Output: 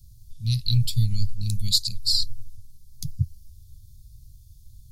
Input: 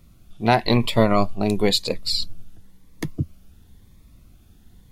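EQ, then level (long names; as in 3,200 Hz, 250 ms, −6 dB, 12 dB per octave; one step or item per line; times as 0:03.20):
elliptic band-stop filter 120–4,600 Hz, stop band 50 dB
+4.0 dB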